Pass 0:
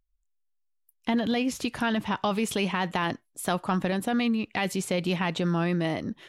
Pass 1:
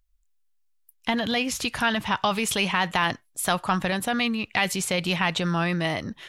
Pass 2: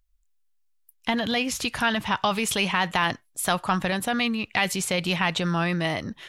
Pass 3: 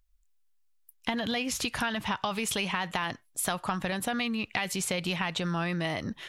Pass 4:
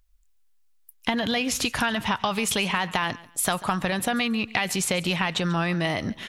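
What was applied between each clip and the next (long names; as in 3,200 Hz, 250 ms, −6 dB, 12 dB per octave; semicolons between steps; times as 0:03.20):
parametric band 300 Hz −10.5 dB 2.2 octaves; level +7.5 dB
no processing that can be heard
downward compressor, threshold −27 dBFS, peak gain reduction 9 dB
repeating echo 140 ms, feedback 26%, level −19.5 dB; level +5.5 dB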